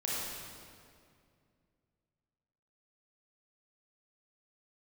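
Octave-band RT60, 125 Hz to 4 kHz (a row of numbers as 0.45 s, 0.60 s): 3.2 s, 2.9 s, 2.5 s, 2.1 s, 1.9 s, 1.7 s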